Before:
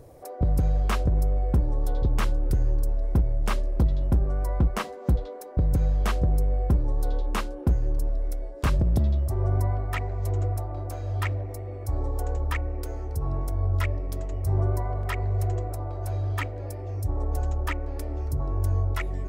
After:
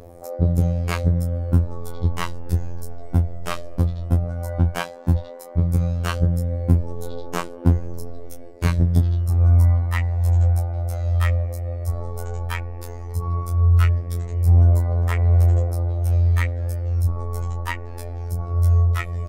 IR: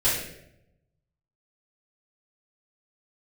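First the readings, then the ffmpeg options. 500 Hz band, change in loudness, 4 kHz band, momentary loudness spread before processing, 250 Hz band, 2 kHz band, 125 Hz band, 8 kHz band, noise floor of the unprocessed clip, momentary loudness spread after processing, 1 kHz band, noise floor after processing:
+2.0 dB, +6.0 dB, +4.0 dB, 8 LU, +5.0 dB, +4.0 dB, +7.5 dB, +4.0 dB, -38 dBFS, 13 LU, +2.0 dB, -35 dBFS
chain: -filter_complex "[0:a]asplit=2[a][b];[b]adelay=20,volume=-6dB[c];[a][c]amix=inputs=2:normalize=0,afftfilt=real='hypot(re,im)*cos(PI*b)':imag='0':win_size=2048:overlap=0.75,aphaser=in_gain=1:out_gain=1:delay=1.7:decay=0.36:speed=0.13:type=triangular,volume=5.5dB"

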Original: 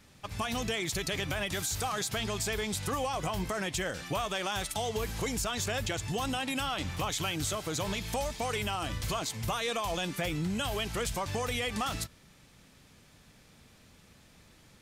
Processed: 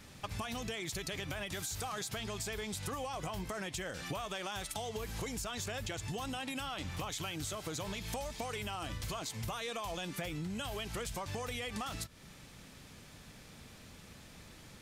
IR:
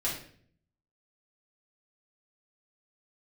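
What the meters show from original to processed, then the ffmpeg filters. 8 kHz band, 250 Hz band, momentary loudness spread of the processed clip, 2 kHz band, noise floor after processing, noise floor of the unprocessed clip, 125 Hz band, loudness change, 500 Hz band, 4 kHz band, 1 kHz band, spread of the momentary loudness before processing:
-6.5 dB, -6.5 dB, 15 LU, -7.0 dB, -55 dBFS, -59 dBFS, -6.0 dB, -6.5 dB, -7.0 dB, -7.0 dB, -7.0 dB, 2 LU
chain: -af "acompressor=threshold=-42dB:ratio=6,volume=4.5dB"

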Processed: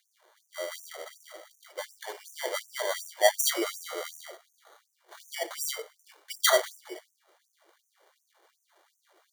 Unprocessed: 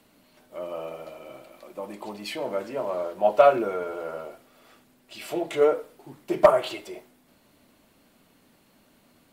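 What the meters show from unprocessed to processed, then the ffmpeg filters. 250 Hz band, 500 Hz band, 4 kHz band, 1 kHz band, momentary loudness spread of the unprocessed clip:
-10.0 dB, -9.0 dB, +8.0 dB, -7.5 dB, 23 LU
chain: -af "acrusher=samples=17:mix=1:aa=0.000001,afftfilt=real='re*gte(b*sr/1024,310*pow(5900/310,0.5+0.5*sin(2*PI*2.7*pts/sr)))':imag='im*gte(b*sr/1024,310*pow(5900/310,0.5+0.5*sin(2*PI*2.7*pts/sr)))':win_size=1024:overlap=0.75"

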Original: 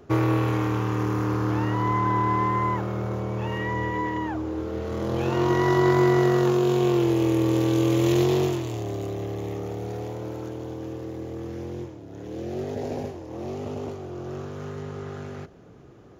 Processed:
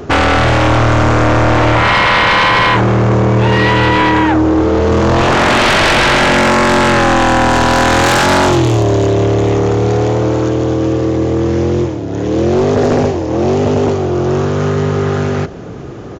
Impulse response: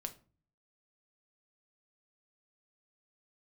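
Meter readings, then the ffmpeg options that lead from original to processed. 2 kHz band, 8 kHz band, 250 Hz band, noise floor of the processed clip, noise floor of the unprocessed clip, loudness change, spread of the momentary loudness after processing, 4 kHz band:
+22.0 dB, +19.0 dB, +11.5 dB, -24 dBFS, -46 dBFS, +14.0 dB, 6 LU, +22.0 dB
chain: -af "aresample=16000,aresample=44100,aeval=exprs='0.355*sin(PI/2*6.31*val(0)/0.355)':c=same,volume=2dB"

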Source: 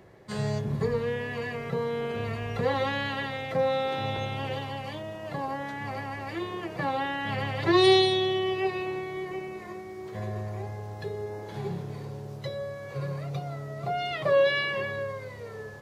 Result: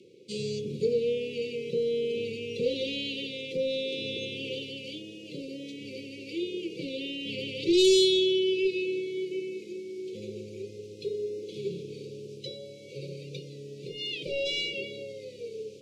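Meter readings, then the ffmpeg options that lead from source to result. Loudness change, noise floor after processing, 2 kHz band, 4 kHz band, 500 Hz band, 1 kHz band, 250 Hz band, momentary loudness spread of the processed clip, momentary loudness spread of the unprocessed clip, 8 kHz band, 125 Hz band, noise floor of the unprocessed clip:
-1.0 dB, -46 dBFS, -6.5 dB, +2.0 dB, -0.5 dB, under -40 dB, 0.0 dB, 16 LU, 14 LU, +7.5 dB, -11.0 dB, -41 dBFS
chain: -af "highpass=310,lowpass=7.4k,aeval=exprs='0.282*sin(PI/2*1.78*val(0)/0.282)':c=same,asuperstop=centerf=1100:order=20:qfactor=0.59,volume=-4.5dB"

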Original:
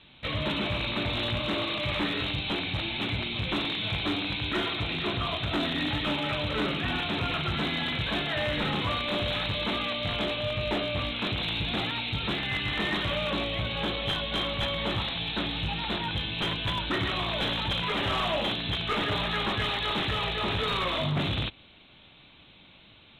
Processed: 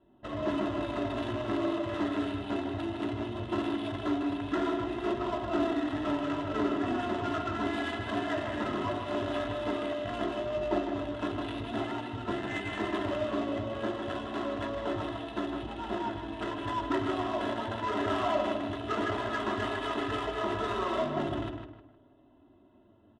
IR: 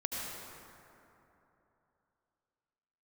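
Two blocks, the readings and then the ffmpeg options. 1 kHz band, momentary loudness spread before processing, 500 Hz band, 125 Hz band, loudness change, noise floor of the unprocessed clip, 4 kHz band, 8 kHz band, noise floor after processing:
-0.5 dB, 2 LU, +1.5 dB, -8.0 dB, -4.0 dB, -54 dBFS, -15.0 dB, n/a, -60 dBFS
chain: -filter_complex "[0:a]asplit=2[a][b];[b]asoftclip=type=hard:threshold=-33.5dB,volume=-8dB[c];[a][c]amix=inputs=2:normalize=0,asuperstop=centerf=2300:order=8:qfactor=5,bandreject=f=60:t=h:w=6,bandreject=f=120:t=h:w=6,bandreject=f=180:t=h:w=6,bandreject=f=240:t=h:w=6,bandreject=f=300:t=h:w=6,bandreject=f=360:t=h:w=6,bandreject=f=420:t=h:w=6,bandreject=f=480:t=h:w=6,bandreject=f=540:t=h:w=6,bandreject=f=600:t=h:w=6,aecho=1:1:3:0.98,adynamicsmooth=sensitivity=1.5:basefreq=680,tiltshelf=f=840:g=3.5,asplit=2[d][e];[e]adelay=155,lowpass=f=3.4k:p=1,volume=-5.5dB,asplit=2[f][g];[g]adelay=155,lowpass=f=3.4k:p=1,volume=0.35,asplit=2[h][i];[i]adelay=155,lowpass=f=3.4k:p=1,volume=0.35,asplit=2[j][k];[k]adelay=155,lowpass=f=3.4k:p=1,volume=0.35[l];[d][f][h][j][l]amix=inputs=5:normalize=0,flanger=delay=5.1:depth=5.2:regen=-49:speed=0.19:shape=triangular,highpass=f=250:p=1,highshelf=f=8.3k:g=-8.5"

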